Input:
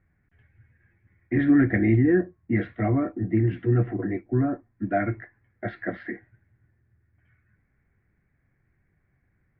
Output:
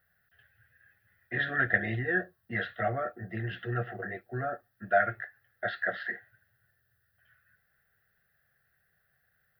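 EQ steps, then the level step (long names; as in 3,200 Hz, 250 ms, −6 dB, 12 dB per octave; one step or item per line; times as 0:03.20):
spectral tilt +4.5 dB per octave
phaser with its sweep stopped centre 1,500 Hz, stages 8
+3.5 dB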